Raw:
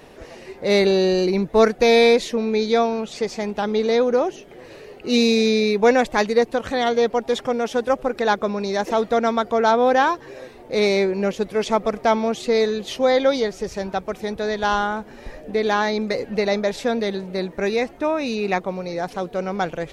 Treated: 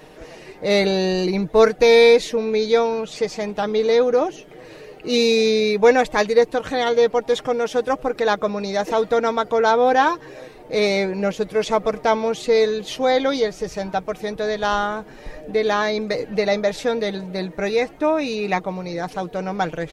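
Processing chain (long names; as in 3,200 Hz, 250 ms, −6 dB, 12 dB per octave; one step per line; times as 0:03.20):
comb filter 6.5 ms, depth 44%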